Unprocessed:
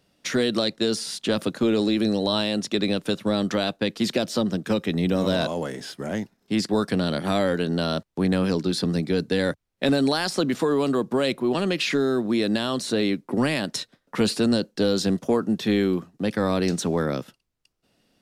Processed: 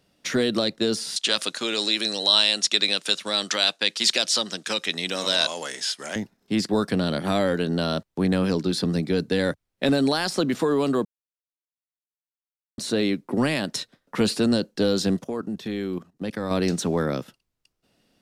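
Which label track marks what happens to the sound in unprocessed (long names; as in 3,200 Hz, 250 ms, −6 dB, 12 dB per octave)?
1.160000	6.160000	meter weighting curve ITU-R 468
11.050000	12.780000	silence
15.240000	16.510000	output level in coarse steps of 14 dB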